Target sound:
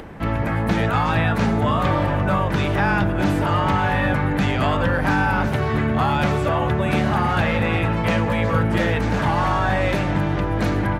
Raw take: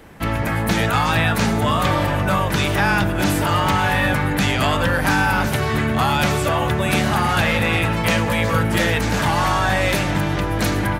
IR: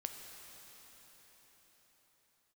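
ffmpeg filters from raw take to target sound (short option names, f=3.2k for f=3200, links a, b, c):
-af "lowpass=f=1.5k:p=1,acompressor=mode=upward:threshold=-30dB:ratio=2.5"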